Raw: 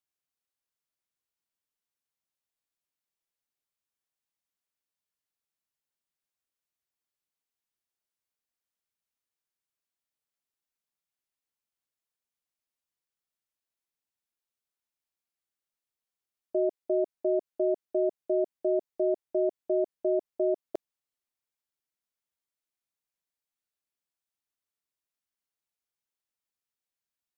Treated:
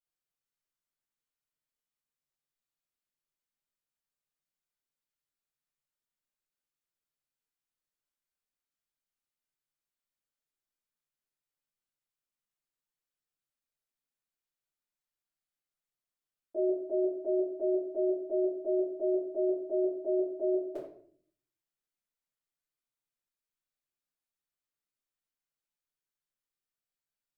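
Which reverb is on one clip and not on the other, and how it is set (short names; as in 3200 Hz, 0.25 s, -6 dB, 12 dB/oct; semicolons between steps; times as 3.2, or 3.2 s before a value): shoebox room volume 69 m³, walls mixed, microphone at 2.6 m; gain -14.5 dB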